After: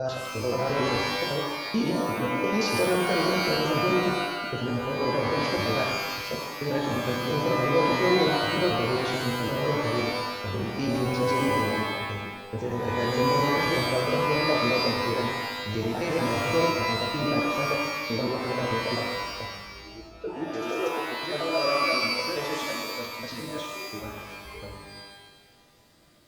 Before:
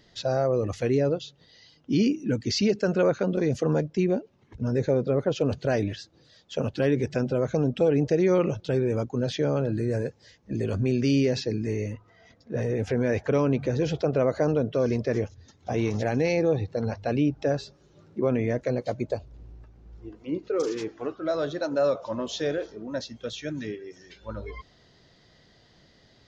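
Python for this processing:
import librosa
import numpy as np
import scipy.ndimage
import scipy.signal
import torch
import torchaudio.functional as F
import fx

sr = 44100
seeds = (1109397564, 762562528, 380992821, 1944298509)

y = fx.block_reorder(x, sr, ms=87.0, group=4)
y = fx.rev_shimmer(y, sr, seeds[0], rt60_s=1.1, semitones=12, shimmer_db=-2, drr_db=0.0)
y = F.gain(torch.from_numpy(y), -6.0).numpy()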